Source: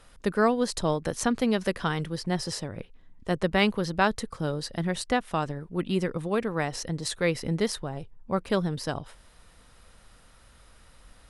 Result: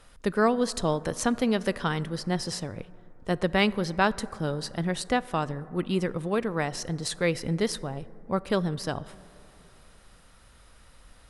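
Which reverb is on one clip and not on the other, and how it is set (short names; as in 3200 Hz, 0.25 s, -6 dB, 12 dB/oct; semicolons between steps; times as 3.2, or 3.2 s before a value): plate-style reverb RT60 3.1 s, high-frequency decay 0.25×, DRR 18 dB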